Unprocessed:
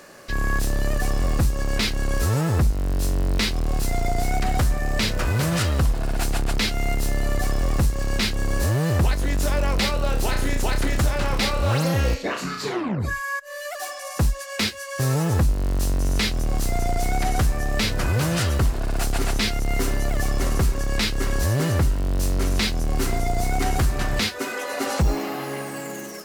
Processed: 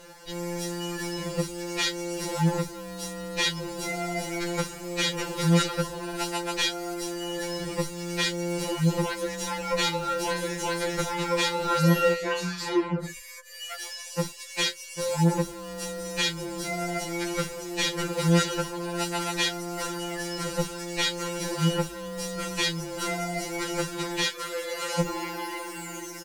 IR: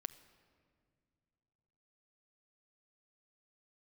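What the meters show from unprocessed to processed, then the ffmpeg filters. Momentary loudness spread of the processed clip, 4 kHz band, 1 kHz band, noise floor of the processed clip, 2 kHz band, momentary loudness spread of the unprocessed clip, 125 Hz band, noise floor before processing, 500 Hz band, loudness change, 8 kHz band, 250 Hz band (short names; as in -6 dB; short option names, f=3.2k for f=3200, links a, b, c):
9 LU, -0.5 dB, -2.5 dB, -41 dBFS, -3.0 dB, 5 LU, -8.0 dB, -34 dBFS, -1.0 dB, -4.5 dB, -2.0 dB, -2.0 dB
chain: -filter_complex "[0:a]acrossover=split=9900[a][b];[b]acompressor=threshold=-47dB:ratio=4:attack=1:release=60[c];[a][c]amix=inputs=2:normalize=0,aecho=1:1:2.1:0.65,afftfilt=real='re*2.83*eq(mod(b,8),0)':imag='im*2.83*eq(mod(b,8),0)':win_size=2048:overlap=0.75"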